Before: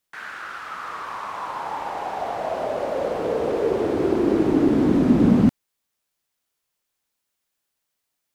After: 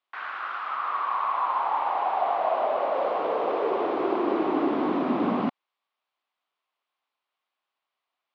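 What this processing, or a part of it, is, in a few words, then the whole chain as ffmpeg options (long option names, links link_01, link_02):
phone earpiece: -filter_complex "[0:a]asettb=1/sr,asplit=3[link_01][link_02][link_03];[link_01]atrim=end=0.754[link_04];[link_02]atrim=start=0.75:end=2.94,asetpts=PTS-STARTPTS,afade=type=in:duration=0.004:curve=qsin,afade=type=out:start_time=2.186:duration=0.004:curve=qsin,lowpass=5800[link_05];[link_03]atrim=start=2.936[link_06];[link_04][link_05]acrossfade=duration=0.004:curve1=hsin:curve2=qsin[link_07];[link_07][link_06]acrossfade=duration=0.004:curve1=qsin:curve2=hsin,highpass=440,equalizer=frequency=470:width_type=q:width=4:gain=-4,equalizer=frequency=740:width_type=q:width=4:gain=4,equalizer=frequency=1100:width_type=q:width=4:gain=8,equalizer=frequency=1700:width_type=q:width=4:gain=-4,lowpass=frequency=3600:width=0.5412,lowpass=frequency=3600:width=1.3066"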